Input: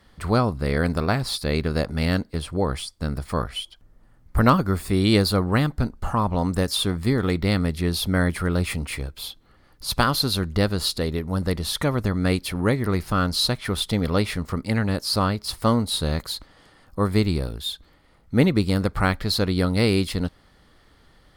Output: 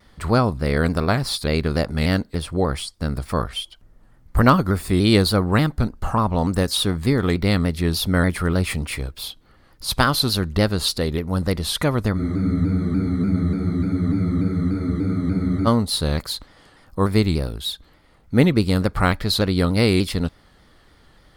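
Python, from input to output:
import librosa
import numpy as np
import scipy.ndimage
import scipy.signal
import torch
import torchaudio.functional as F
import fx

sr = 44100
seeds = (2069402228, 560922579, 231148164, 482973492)

y = fx.spec_freeze(x, sr, seeds[0], at_s=12.2, hold_s=3.47)
y = fx.vibrato_shape(y, sr, shape='saw_down', rate_hz=3.4, depth_cents=100.0)
y = y * librosa.db_to_amplitude(2.5)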